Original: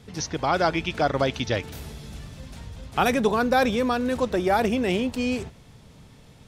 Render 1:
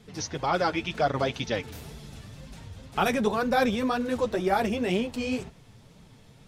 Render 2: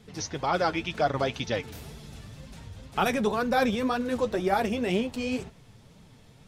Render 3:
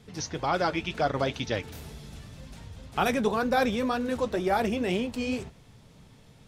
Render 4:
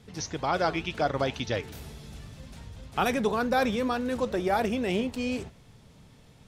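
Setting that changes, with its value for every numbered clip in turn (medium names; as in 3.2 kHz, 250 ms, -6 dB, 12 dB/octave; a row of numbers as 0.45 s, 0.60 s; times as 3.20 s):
flange, regen: -10%, +35%, -57%, +85%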